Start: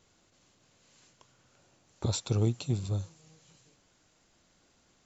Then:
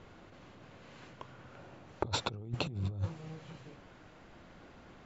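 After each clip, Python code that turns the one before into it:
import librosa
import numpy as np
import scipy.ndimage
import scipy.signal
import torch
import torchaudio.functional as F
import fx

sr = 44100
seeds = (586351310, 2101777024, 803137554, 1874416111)

y = scipy.signal.sosfilt(scipy.signal.butter(2, 2100.0, 'lowpass', fs=sr, output='sos'), x)
y = fx.over_compress(y, sr, threshold_db=-42.0, ratio=-1.0)
y = y * 10.0 ** (4.5 / 20.0)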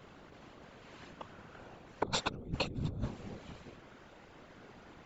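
y = fx.low_shelf(x, sr, hz=99.0, db=-6.0)
y = fx.whisperise(y, sr, seeds[0])
y = y * 10.0 ** (1.0 / 20.0)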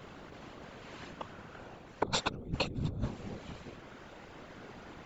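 y = fx.rider(x, sr, range_db=4, speed_s=2.0)
y = y * 10.0 ** (1.5 / 20.0)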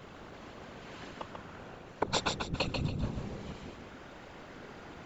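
y = fx.echo_feedback(x, sr, ms=141, feedback_pct=33, wet_db=-4.5)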